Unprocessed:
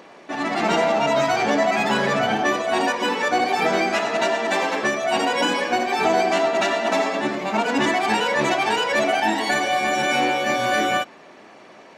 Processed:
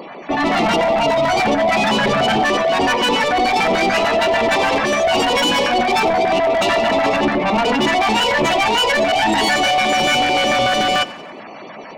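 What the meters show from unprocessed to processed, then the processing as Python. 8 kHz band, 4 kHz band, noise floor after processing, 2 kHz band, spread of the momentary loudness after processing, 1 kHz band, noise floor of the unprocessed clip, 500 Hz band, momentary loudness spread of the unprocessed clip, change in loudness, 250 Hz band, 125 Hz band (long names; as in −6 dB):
+4.5 dB, +8.5 dB, −35 dBFS, +4.0 dB, 2 LU, +5.0 dB, −46 dBFS, +4.5 dB, 3 LU, +5.0 dB, +4.5 dB, +6.5 dB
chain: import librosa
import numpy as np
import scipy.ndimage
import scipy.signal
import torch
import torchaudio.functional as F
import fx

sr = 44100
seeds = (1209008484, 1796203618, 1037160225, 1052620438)

p1 = fx.spec_gate(x, sr, threshold_db=-20, keep='strong')
p2 = scipy.signal.sosfilt(scipy.signal.butter(2, 65.0, 'highpass', fs=sr, output='sos'), p1)
p3 = fx.dynamic_eq(p2, sr, hz=3000.0, q=6.6, threshold_db=-44.0, ratio=4.0, max_db=5)
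p4 = fx.over_compress(p3, sr, threshold_db=-23.0, ratio=-0.5)
p5 = p3 + (p4 * 10.0 ** (-3.0 / 20.0))
p6 = 10.0 ** (-18.0 / 20.0) * np.tanh(p5 / 10.0 ** (-18.0 / 20.0))
p7 = fx.filter_lfo_notch(p6, sr, shape='square', hz=6.8, low_hz=390.0, high_hz=1600.0, q=1.1)
p8 = 10.0 ** (-17.5 / 20.0) * (np.abs((p7 / 10.0 ** (-17.5 / 20.0) + 3.0) % 4.0 - 2.0) - 1.0)
p9 = p8 + fx.echo_feedback(p8, sr, ms=92, feedback_pct=55, wet_db=-19.5, dry=0)
y = p9 * 10.0 ** (7.5 / 20.0)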